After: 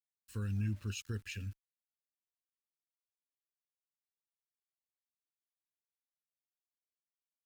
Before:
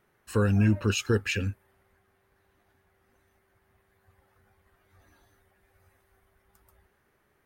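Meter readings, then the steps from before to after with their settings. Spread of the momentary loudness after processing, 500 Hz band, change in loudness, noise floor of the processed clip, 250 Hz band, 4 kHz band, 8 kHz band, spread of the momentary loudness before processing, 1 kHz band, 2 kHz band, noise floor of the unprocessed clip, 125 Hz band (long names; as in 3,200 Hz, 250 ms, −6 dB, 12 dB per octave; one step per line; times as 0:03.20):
11 LU, −23.5 dB, −13.5 dB, below −85 dBFS, −16.0 dB, −14.0 dB, −12.0 dB, 8 LU, −21.5 dB, −16.5 dB, −70 dBFS, −11.0 dB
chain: centre clipping without the shift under −42.5 dBFS
guitar amp tone stack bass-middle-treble 6-0-2
level +2.5 dB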